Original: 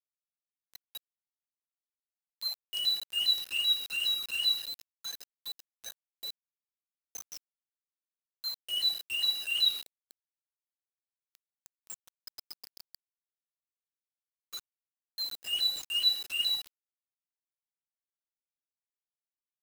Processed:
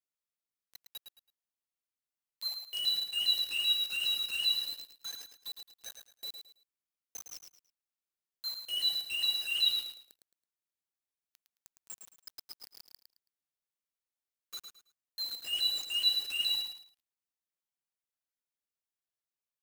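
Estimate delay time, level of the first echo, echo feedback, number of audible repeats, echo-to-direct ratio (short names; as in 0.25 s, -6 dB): 0.109 s, -7.0 dB, 27%, 3, -6.5 dB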